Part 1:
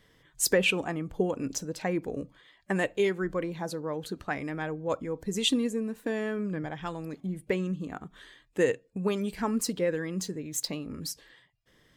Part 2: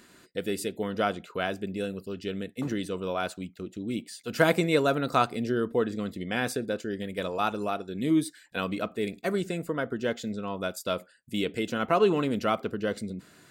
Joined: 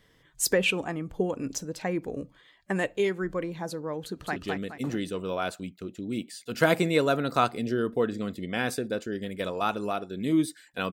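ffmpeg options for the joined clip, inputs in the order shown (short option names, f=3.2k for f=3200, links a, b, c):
-filter_complex "[0:a]apad=whole_dur=10.92,atrim=end=10.92,atrim=end=4.362[a];[1:a]atrim=start=2.138:end=8.7[b];[a][b]acrossfade=d=0.004:c1=hsin:c2=hsin,asplit=2[c][d];[d]afade=t=in:st=4.01:d=0.01,afade=t=out:st=4.36:d=0.01,aecho=0:1:210|420|630|840|1050:0.707946|0.247781|0.0867234|0.0303532|0.0106236[e];[c][e]amix=inputs=2:normalize=0"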